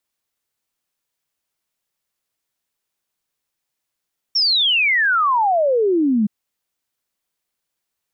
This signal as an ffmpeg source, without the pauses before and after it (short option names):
-f lavfi -i "aevalsrc='0.211*clip(min(t,1.92-t)/0.01,0,1)*sin(2*PI*5600*1.92/log(200/5600)*(exp(log(200/5600)*t/1.92)-1))':d=1.92:s=44100"